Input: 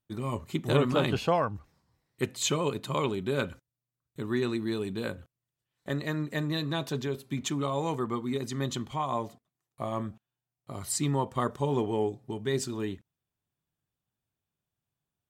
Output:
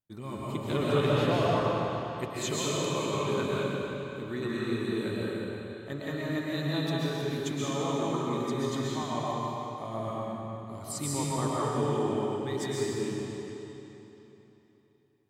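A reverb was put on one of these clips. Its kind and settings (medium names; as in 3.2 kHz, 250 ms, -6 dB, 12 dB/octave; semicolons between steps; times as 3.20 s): algorithmic reverb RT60 3.4 s, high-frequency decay 0.9×, pre-delay 90 ms, DRR -7 dB; trim -7 dB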